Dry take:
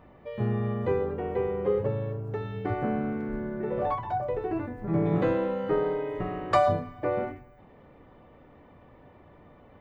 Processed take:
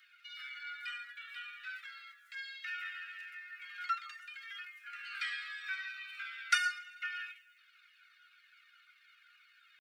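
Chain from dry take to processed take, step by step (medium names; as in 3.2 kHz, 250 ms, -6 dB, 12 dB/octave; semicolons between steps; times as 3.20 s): steep high-pass 1.1 kHz 96 dB/octave; treble shelf 2.1 kHz +12 dB; pitch shift +3.5 st; Shepard-style flanger falling 1.9 Hz; trim +1.5 dB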